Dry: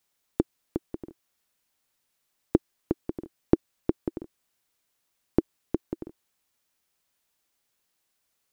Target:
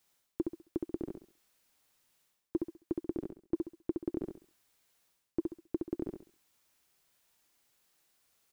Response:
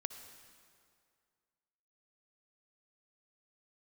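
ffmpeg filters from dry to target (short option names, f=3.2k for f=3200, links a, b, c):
-af "areverse,acompressor=threshold=-33dB:ratio=10,areverse,aecho=1:1:67|134|201|268:0.631|0.183|0.0531|0.0154,volume=2dB"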